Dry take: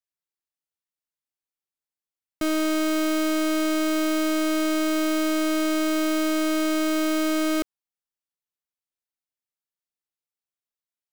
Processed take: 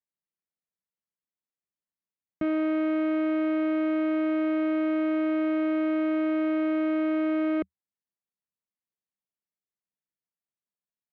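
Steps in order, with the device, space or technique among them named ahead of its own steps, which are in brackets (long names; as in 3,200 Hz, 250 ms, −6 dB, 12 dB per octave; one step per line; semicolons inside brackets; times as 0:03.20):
bass cabinet (loudspeaker in its box 66–2,100 Hz, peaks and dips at 78 Hz +4 dB, 190 Hz +10 dB, 820 Hz −4 dB, 1,400 Hz −8 dB)
level −2 dB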